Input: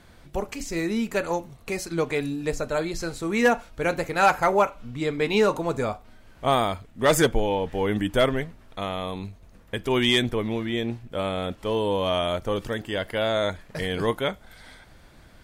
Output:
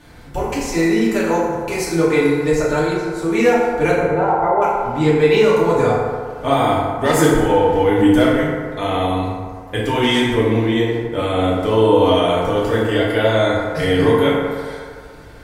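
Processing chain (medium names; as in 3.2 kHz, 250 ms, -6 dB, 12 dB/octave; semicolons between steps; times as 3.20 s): compression 3:1, threshold -23 dBFS, peak gain reduction 7.5 dB; 2.93–3.39 s: fade in; 3.96–4.62 s: Savitzky-Golay filter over 65 samples; FDN reverb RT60 1.9 s, low-frequency decay 0.75×, high-frequency decay 0.4×, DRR -8 dB; trim +2.5 dB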